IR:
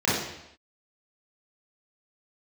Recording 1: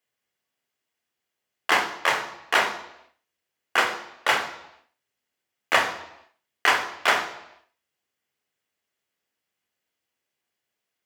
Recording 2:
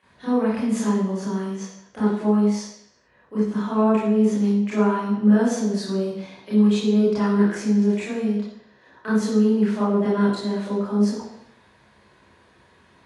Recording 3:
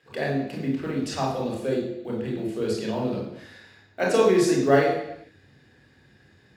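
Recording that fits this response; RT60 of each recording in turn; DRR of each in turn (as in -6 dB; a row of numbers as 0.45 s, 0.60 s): 2; no single decay rate, no single decay rate, no single decay rate; 7.5 dB, -9.0 dB, -2.5 dB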